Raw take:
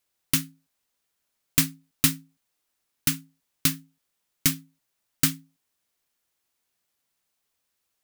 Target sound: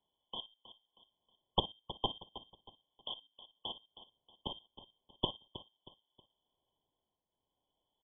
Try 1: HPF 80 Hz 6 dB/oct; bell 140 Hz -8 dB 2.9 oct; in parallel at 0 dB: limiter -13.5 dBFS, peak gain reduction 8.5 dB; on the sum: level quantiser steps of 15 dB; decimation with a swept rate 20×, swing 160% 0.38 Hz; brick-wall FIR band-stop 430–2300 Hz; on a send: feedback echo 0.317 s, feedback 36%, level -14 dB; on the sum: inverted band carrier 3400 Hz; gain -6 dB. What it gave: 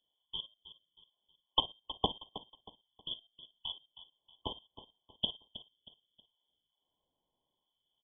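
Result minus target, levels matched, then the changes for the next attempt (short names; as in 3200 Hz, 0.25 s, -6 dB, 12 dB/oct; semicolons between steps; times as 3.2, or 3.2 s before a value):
decimation with a swept rate: distortion +9 dB
change: decimation with a swept rate 7×, swing 160% 0.38 Hz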